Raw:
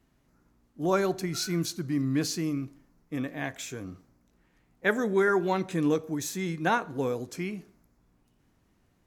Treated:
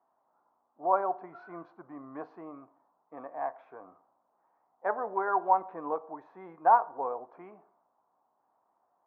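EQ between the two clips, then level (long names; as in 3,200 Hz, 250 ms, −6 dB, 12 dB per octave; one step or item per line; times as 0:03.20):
flat-topped band-pass 880 Hz, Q 2
high-frequency loss of the air 190 metres
spectral tilt −2.5 dB per octave
+8.0 dB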